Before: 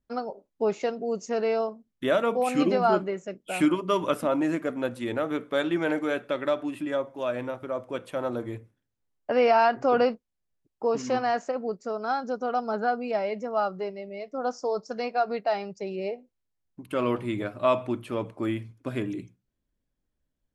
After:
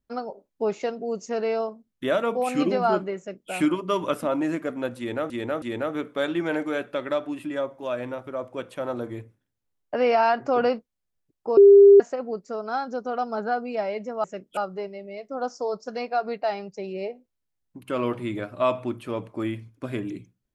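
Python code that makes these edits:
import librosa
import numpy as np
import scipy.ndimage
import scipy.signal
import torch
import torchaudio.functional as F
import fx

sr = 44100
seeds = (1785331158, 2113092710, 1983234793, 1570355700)

y = fx.edit(x, sr, fx.duplicate(start_s=3.18, length_s=0.33, to_s=13.6),
    fx.repeat(start_s=4.98, length_s=0.32, count=3),
    fx.bleep(start_s=10.93, length_s=0.43, hz=400.0, db=-7.5), tone=tone)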